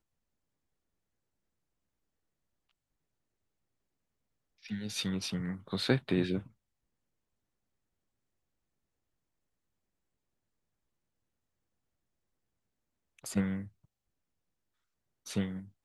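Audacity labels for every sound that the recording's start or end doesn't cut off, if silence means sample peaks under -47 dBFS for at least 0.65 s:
4.650000	6.470000	sound
13.190000	13.680000	sound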